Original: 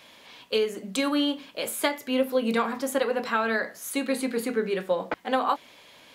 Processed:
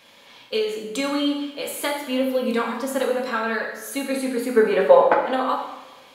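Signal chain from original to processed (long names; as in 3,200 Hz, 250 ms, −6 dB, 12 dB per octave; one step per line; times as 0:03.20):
0:04.56–0:05.15: parametric band 800 Hz +14.5 dB 2.6 octaves
convolution reverb, pre-delay 3 ms, DRR 0 dB
level −1.5 dB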